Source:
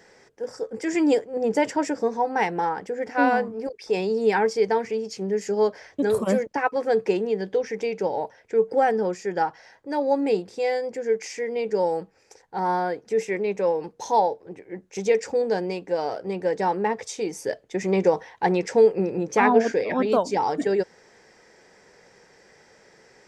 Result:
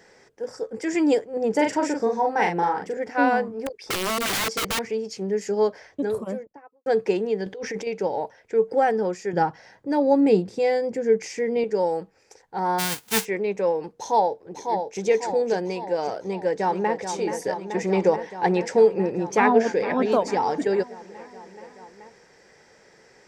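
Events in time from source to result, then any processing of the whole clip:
0:01.55–0:02.97: double-tracking delay 40 ms −3.5 dB
0:03.53–0:04.86: wrap-around overflow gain 20.5 dB
0:05.59–0:06.86: fade out and dull
0:07.46–0:07.87: compressor whose output falls as the input rises −31 dBFS
0:09.33–0:11.64: parametric band 150 Hz +11.5 dB 2.2 octaves
0:12.78–0:13.24: spectral envelope flattened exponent 0.1
0:13.97–0:15.00: delay throw 550 ms, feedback 55%, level −5.5 dB
0:16.20–0:17.00: delay throw 430 ms, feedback 85%, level −8 dB
0:19.35–0:19.89: delay throw 450 ms, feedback 55%, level −14.5 dB

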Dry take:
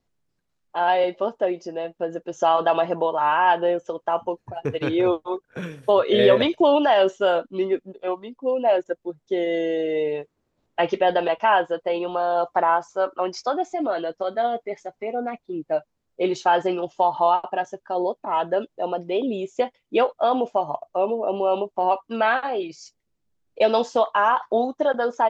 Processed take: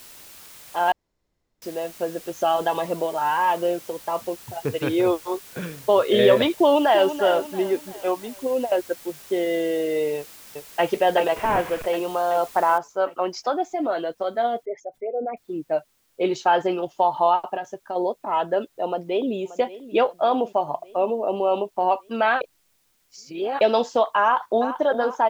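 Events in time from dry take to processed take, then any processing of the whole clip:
0:00.92–0:01.62: fill with room tone
0:02.30–0:04.54: phaser whose notches keep moving one way rising 1.6 Hz
0:06.55–0:07.14: delay throw 340 ms, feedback 40%, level −10.5 dB
0:07.94–0:08.72: compressor whose output falls as the input rises −22 dBFS, ratio −0.5
0:10.17–0:10.86: delay throw 380 ms, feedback 60%, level −3 dB
0:11.36–0:11.86: linear delta modulator 16 kbit/s, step −28 dBFS
0:12.78: noise floor change −45 dB −67 dB
0:14.63–0:15.37: spectral envelope exaggerated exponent 2
0:17.55–0:17.96: downward compressor, threshold −24 dBFS
0:18.87–0:19.36: delay throw 580 ms, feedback 60%, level −16 dB
0:22.41–0:23.61: reverse
0:24.22–0:24.77: delay throw 390 ms, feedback 55%, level −11 dB

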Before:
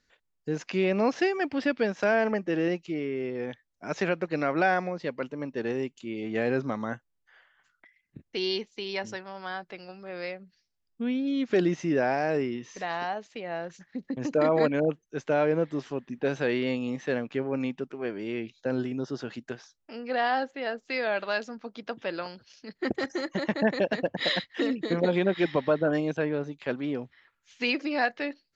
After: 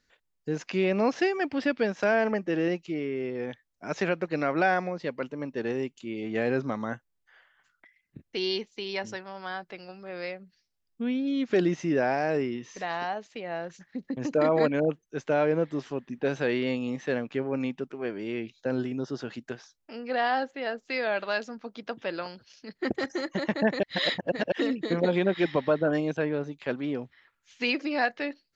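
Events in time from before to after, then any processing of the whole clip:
0:23.83–0:24.52: reverse

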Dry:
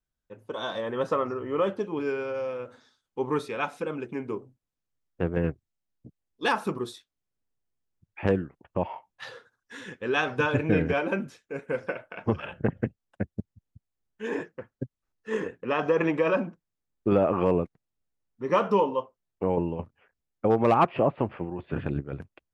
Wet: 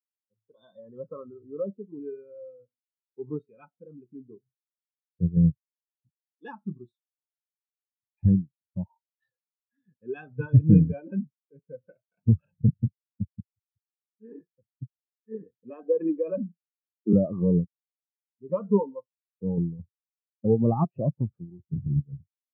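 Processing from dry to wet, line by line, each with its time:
0:06.52–0:09.84: parametric band 470 Hz −8.5 dB 0.25 octaves
0:15.70–0:17.13: Butterworth high-pass 170 Hz 96 dB per octave
whole clip: high-pass filter 76 Hz 12 dB per octave; bass and treble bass +11 dB, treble +8 dB; every bin expanded away from the loudest bin 2.5 to 1

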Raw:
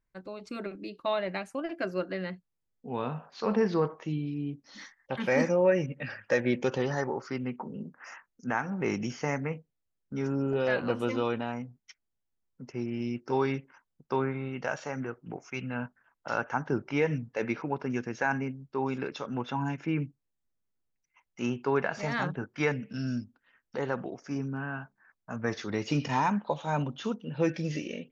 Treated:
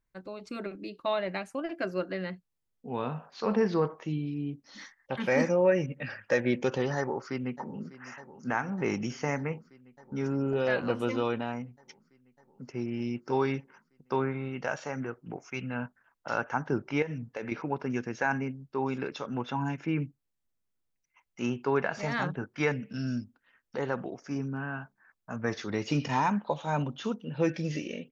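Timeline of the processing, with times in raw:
0:06.97–0:08.00: delay throw 600 ms, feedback 80%, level −17 dB
0:17.02–0:17.52: downward compressor 12 to 1, threshold −31 dBFS

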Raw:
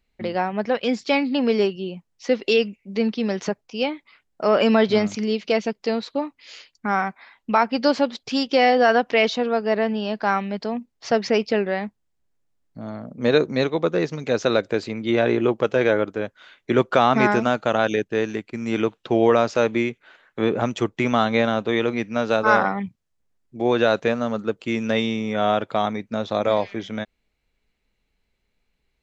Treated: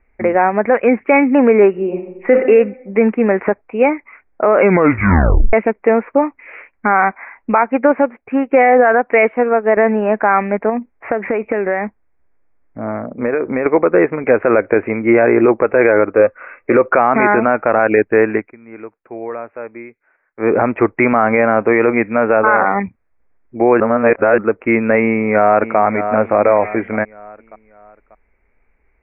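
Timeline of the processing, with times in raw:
0:01.69–0:02.33: thrown reverb, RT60 0.9 s, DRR 3.5 dB
0:04.56: tape stop 0.97 s
0:07.61–0:09.77: expander for the loud parts, over −34 dBFS
0:10.69–0:13.66: downward compressor 16 to 1, threshold −24 dBFS
0:16.11–0:16.88: hollow resonant body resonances 520/1,200/2,600 Hz, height 11 dB
0:18.34–0:20.58: duck −22 dB, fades 0.21 s
0:23.80–0:24.38: reverse
0:25.03–0:25.78: delay throw 590 ms, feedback 40%, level −13 dB
whole clip: Butterworth low-pass 2,400 Hz 96 dB per octave; parametric band 150 Hz −13.5 dB 1 octave; boost into a limiter +15 dB; level −1 dB

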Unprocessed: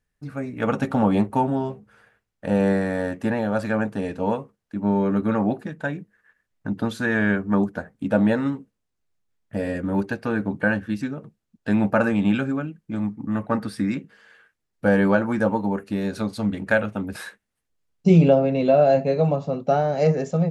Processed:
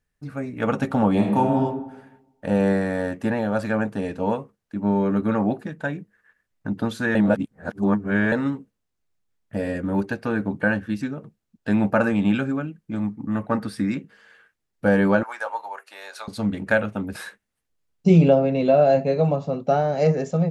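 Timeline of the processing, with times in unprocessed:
0:01.14–0:01.58: thrown reverb, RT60 1 s, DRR 1 dB
0:07.15–0:08.32: reverse
0:15.23–0:16.28: high-pass filter 720 Hz 24 dB per octave

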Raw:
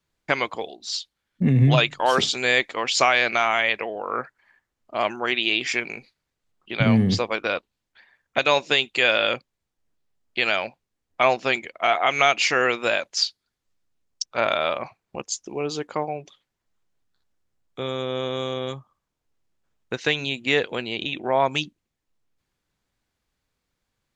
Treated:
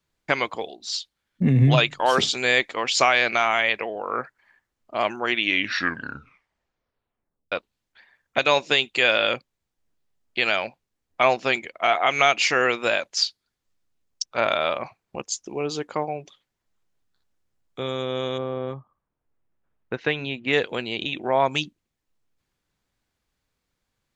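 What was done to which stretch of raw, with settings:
0:05.25: tape stop 2.27 s
0:18.37–0:20.52: low-pass filter 1,300 Hz → 2,800 Hz

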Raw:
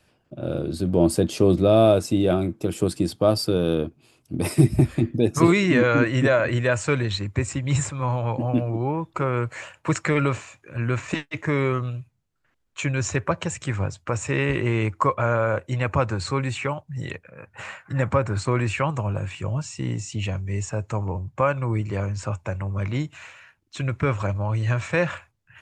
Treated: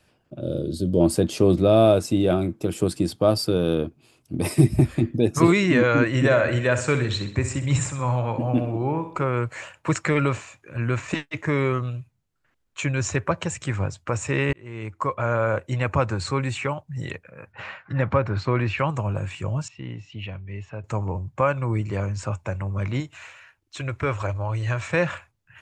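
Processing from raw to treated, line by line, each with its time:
0:00.40–0:01.01: gain on a spectral selection 640–2,900 Hz −12 dB
0:04.35–0:04.80: notch filter 1,400 Hz, Q 11
0:06.07–0:09.16: repeating echo 64 ms, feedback 44%, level −10 dB
0:14.53–0:15.45: fade in
0:17.52–0:18.79: low-pass filter 4,800 Hz 24 dB per octave
0:19.68–0:20.84: transistor ladder low-pass 3,800 Hz, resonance 35%
0:23.00–0:24.87: parametric band 190 Hz −11.5 dB

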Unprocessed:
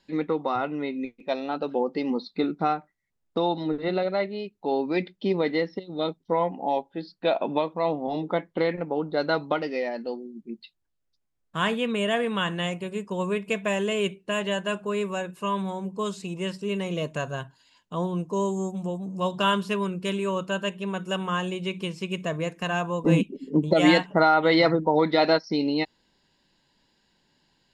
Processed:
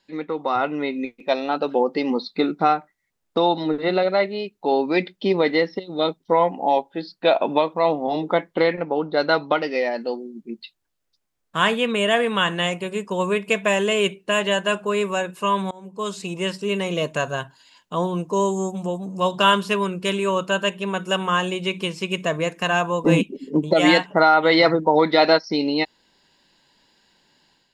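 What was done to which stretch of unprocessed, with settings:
0:08.69–0:09.75: elliptic low-pass filter 6,000 Hz
0:15.71–0:16.27: fade in, from −22.5 dB
whole clip: low-shelf EQ 260 Hz −8.5 dB; automatic gain control gain up to 8 dB

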